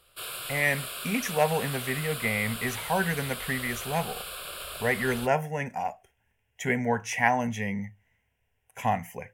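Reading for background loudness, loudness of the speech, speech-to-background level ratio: −35.5 LKFS, −29.0 LKFS, 6.5 dB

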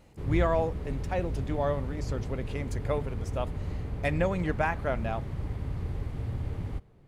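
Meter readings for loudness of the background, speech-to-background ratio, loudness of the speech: −35.5 LKFS, 3.0 dB, −32.5 LKFS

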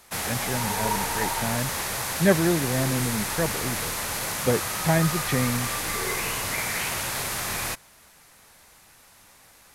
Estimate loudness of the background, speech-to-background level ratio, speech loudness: −27.0 LKFS, −0.5 dB, −27.5 LKFS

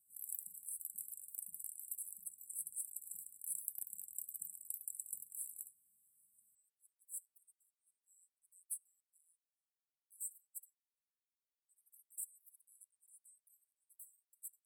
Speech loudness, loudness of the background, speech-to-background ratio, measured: −48.5 LKFS, −46.0 LKFS, −2.5 dB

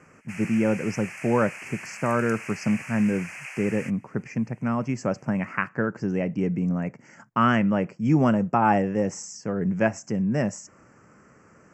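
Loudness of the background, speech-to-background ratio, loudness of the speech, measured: −38.0 LKFS, 12.5 dB, −25.5 LKFS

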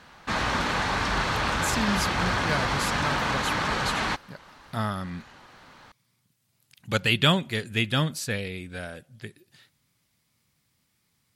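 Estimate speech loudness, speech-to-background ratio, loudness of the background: −28.5 LKFS, −2.5 dB, −26.0 LKFS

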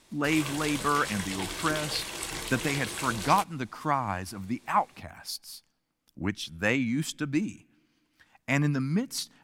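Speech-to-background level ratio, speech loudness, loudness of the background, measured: 4.5 dB, −30.0 LKFS, −34.5 LKFS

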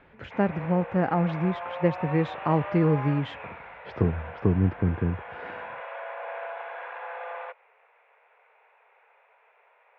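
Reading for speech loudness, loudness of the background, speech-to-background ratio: −26.5 LKFS, −38.0 LKFS, 11.5 dB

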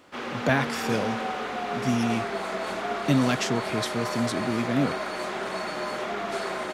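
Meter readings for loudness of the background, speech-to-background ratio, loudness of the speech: −30.5 LKFS, 2.5 dB, −28.0 LKFS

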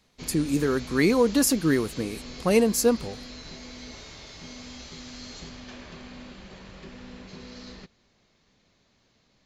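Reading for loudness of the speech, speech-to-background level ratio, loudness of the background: −23.5 LKFS, 18.0 dB, −41.5 LKFS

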